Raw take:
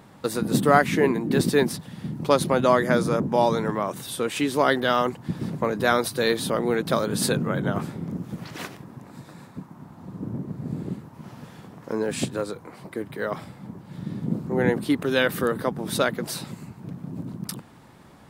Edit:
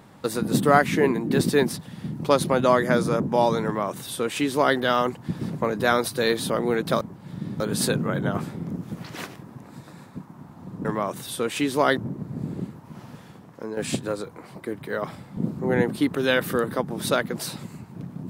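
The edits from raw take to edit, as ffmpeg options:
-filter_complex "[0:a]asplit=7[s0][s1][s2][s3][s4][s5][s6];[s0]atrim=end=7.012[s7];[s1]atrim=start=13.658:end=14.252[s8];[s2]atrim=start=7.008:end=10.262[s9];[s3]atrim=start=3.648:end=4.772[s10];[s4]atrim=start=10.258:end=12.06,asetpts=PTS-STARTPTS,afade=t=out:st=1.102:d=0.7:silence=0.398107[s11];[s5]atrim=start=12.06:end=13.662,asetpts=PTS-STARTPTS,afade=t=in:d=0.004:c=hsin:silence=0.398107[s12];[s6]atrim=start=14.248[s13];[s7][s8]acrossfade=d=0.004:c1=hsin:c2=hsin[s14];[s14][s9]acrossfade=d=0.004:c1=hsin:c2=hsin[s15];[s15][s10]acrossfade=d=0.004:c1=hsin:c2=hsin[s16];[s11][s12]concat=n=2:v=0:a=1[s17];[s16][s17]acrossfade=d=0.004:c1=hsin:c2=hsin[s18];[s18][s13]acrossfade=d=0.004:c1=hsin:c2=hsin"

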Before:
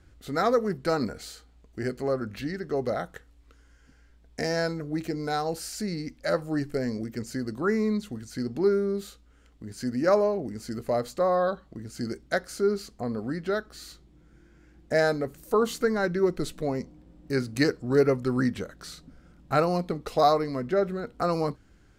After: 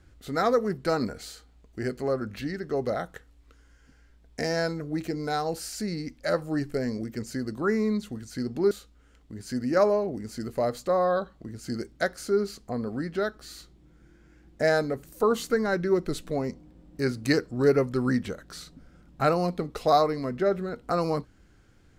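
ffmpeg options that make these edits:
-filter_complex "[0:a]asplit=2[s0][s1];[s0]atrim=end=8.712[s2];[s1]atrim=start=9.018[s3];[s2][s3]acrossfade=d=0.004:c1=hsin:c2=hsin"

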